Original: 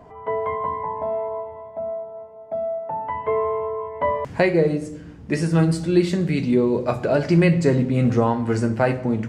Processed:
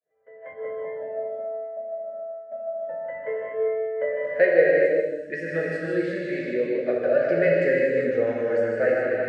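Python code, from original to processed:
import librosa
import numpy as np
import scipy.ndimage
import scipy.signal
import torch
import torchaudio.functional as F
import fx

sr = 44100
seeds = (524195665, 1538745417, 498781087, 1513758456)

y = fx.fade_in_head(x, sr, length_s=0.6)
y = fx.double_bandpass(y, sr, hz=970.0, octaves=1.7)
y = y + 10.0 ** (-6.0 / 20.0) * np.pad(y, (int(153 * sr / 1000.0), 0))[:len(y)]
y = fx.rev_gated(y, sr, seeds[0], gate_ms=440, shape='flat', drr_db=-3.0)
y = fx.noise_reduce_blind(y, sr, reduce_db=9)
y = y * librosa.db_to_amplitude(3.0)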